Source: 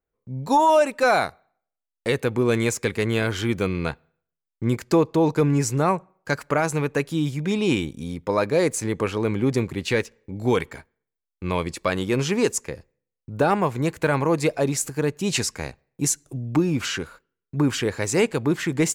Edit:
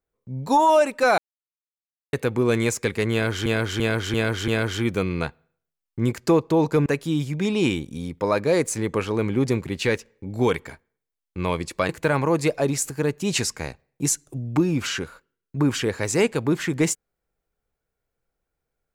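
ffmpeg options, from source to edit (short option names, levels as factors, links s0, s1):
-filter_complex "[0:a]asplit=9[s0][s1][s2][s3][s4][s5][s6][s7][s8];[s0]atrim=end=1.18,asetpts=PTS-STARTPTS,afade=t=out:st=1.176:d=0.004:c=hsin[s9];[s1]atrim=start=1.18:end=2.13,asetpts=PTS-STARTPTS,volume=0[s10];[s2]atrim=start=2.13:end=3.462,asetpts=PTS-STARTPTS,afade=t=in:d=0.004:c=hsin[s11];[s3]atrim=start=3.118:end=3.462[s12];[s4]atrim=start=3.118:end=3.462[s13];[s5]atrim=start=3.118:end=3.462[s14];[s6]atrim=start=3.118:end=5.502[s15];[s7]atrim=start=6.918:end=11.952[s16];[s8]atrim=start=13.878[s17];[s9][s10][s11]concat=n=3:v=0:a=1[s18];[s18][s12]acrossfade=d=0.004:c1=hsin:c2=hsin[s19];[s19][s13]acrossfade=d=0.004:c1=hsin:c2=hsin[s20];[s20][s14]acrossfade=d=0.004:c1=hsin:c2=hsin[s21];[s21][s15]acrossfade=d=0.004:c1=hsin:c2=hsin[s22];[s22][s16]acrossfade=d=0.004:c1=hsin:c2=hsin[s23];[s23][s17]acrossfade=d=0.004:c1=hsin:c2=hsin"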